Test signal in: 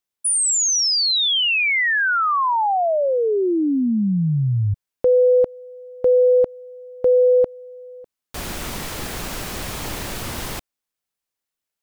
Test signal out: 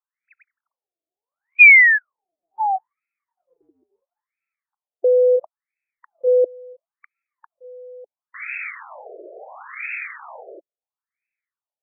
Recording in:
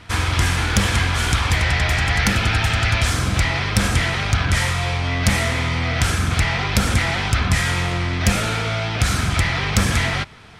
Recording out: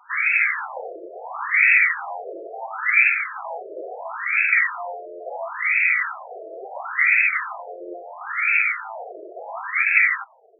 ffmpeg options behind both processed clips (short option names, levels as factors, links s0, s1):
-af "aexciter=amount=7.1:drive=6.3:freq=2200,afftfilt=real='re*between(b*sr/1024,470*pow(1900/470,0.5+0.5*sin(2*PI*0.73*pts/sr))/1.41,470*pow(1900/470,0.5+0.5*sin(2*PI*0.73*pts/sr))*1.41)':imag='im*between(b*sr/1024,470*pow(1900/470,0.5+0.5*sin(2*PI*0.73*pts/sr))/1.41,470*pow(1900/470,0.5+0.5*sin(2*PI*0.73*pts/sr))*1.41)':win_size=1024:overlap=0.75"